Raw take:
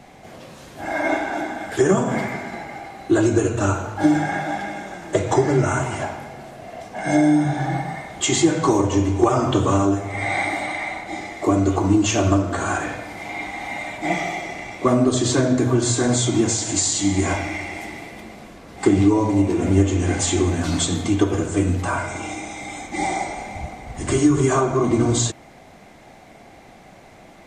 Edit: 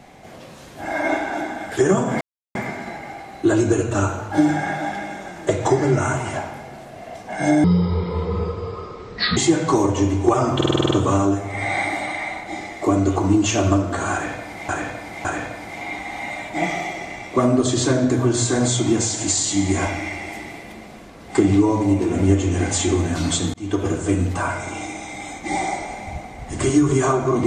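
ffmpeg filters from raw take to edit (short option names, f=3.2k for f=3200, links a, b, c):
-filter_complex "[0:a]asplit=14[a][b][c][d][e][f][g][h][i][j][k][l][m][n];[a]atrim=end=2.21,asetpts=PTS-STARTPTS,afade=t=out:st=2.206:d=0.004:c=hsin,apad=pad_dur=0.34[o];[b]atrim=start=2.21:end=7.304,asetpts=PTS-STARTPTS,afade=t=in:d=0.004:c=hsin[p];[c]atrim=start=7.3:end=8.32,asetpts=PTS-STARTPTS,asetrate=26019,aresample=44100[q];[d]atrim=start=8.316:end=9.562[r];[e]atrim=start=9.508:end=9.562[s];[f]atrim=start=9.508:end=9.562[t];[g]atrim=start=9.508:end=9.562[u];[h]atrim=start=9.508:end=9.562[v];[i]atrim=start=9.508:end=9.562[w];[j]atrim=start=9.508:end=9.562[x];[k]atrim=start=9.508:end=13.292[y];[l]atrim=start=12.728:end=13.292[z];[m]atrim=start=12.728:end=21.02,asetpts=PTS-STARTPTS,afade=t=out:st=8.288:d=0.004:c=hsin[aa];[n]atrim=start=21.02,asetpts=PTS-STARTPTS,afade=t=in:d=0.32[ab];[o][p]concat=n=2:v=0:a=1[ac];[ac][q]acrossfade=d=0.004:c1=hsin:c2=hsin[ad];[ad][r]acrossfade=d=0.004:c1=hsin:c2=hsin[ae];[ae][s]acrossfade=d=0.004:c1=hsin:c2=hsin[af];[af][t]acrossfade=d=0.004:c1=hsin:c2=hsin[ag];[ag][u]acrossfade=d=0.004:c1=hsin:c2=hsin[ah];[ah][v]acrossfade=d=0.004:c1=hsin:c2=hsin[ai];[ai][w]acrossfade=d=0.004:c1=hsin:c2=hsin[aj];[aj][x]acrossfade=d=0.004:c1=hsin:c2=hsin[ak];[ak][y]acrossfade=d=0.004:c1=hsin:c2=hsin[al];[al][z]acrossfade=d=0.004:c1=hsin:c2=hsin[am];[aa][ab]concat=n=2:v=0:a=1[an];[am][an]acrossfade=d=0.004:c1=hsin:c2=hsin"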